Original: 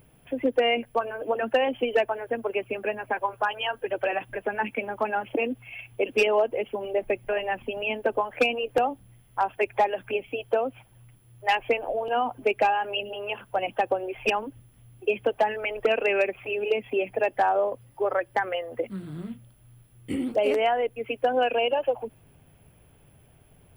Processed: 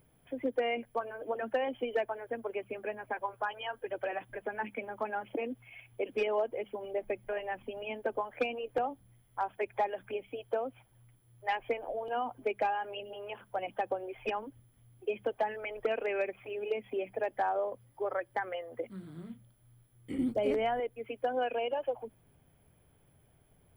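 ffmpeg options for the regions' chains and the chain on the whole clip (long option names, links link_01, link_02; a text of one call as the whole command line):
ffmpeg -i in.wav -filter_complex "[0:a]asettb=1/sr,asplit=3[link_01][link_02][link_03];[link_01]atrim=end=20.184[link_04];[link_02]atrim=start=20.18:end=20.8,asetpts=PTS-STARTPTS,afade=type=in:duration=0.004:curve=qsin,afade=type=out:start_time=0.616:duration=0.004:curve=qsin,agate=range=-33dB:threshold=-31dB:ratio=3:release=100:detection=peak,bass=frequency=250:gain=15,treble=frequency=4000:gain=6[link_05];[link_03]atrim=start=20.796[link_06];[link_04][link_05]acrossfade=duration=0.004:curve1=hsin:curve2=qsin[link_07];[link_07][link_06]acrossfade=duration=0.004:curve1=qsin:curve2=hsin,bandreject=frequency=2700:width=7.7,acrossover=split=3700[link_08][link_09];[link_09]acompressor=threshold=-51dB:ratio=4:attack=1:release=60[link_10];[link_08][link_10]amix=inputs=2:normalize=0,bandreject=frequency=50:width_type=h:width=6,bandreject=frequency=100:width_type=h:width=6,bandreject=frequency=150:width_type=h:width=6,bandreject=frequency=200:width_type=h:width=6,volume=-8.5dB" out.wav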